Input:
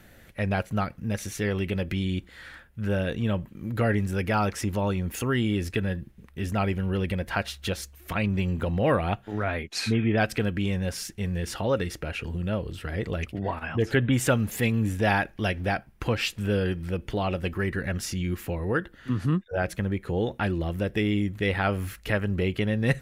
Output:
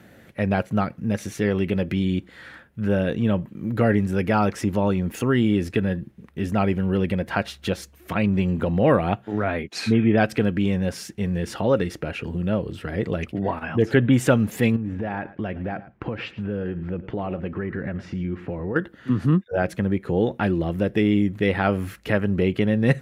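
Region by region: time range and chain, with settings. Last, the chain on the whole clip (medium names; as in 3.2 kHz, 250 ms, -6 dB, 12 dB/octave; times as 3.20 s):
14.76–18.76 s: low-pass 2.1 kHz + compression 12:1, threshold -28 dBFS + delay 110 ms -16.5 dB
whole clip: high-pass 160 Hz 12 dB/octave; tilt EQ -2 dB/octave; trim +3.5 dB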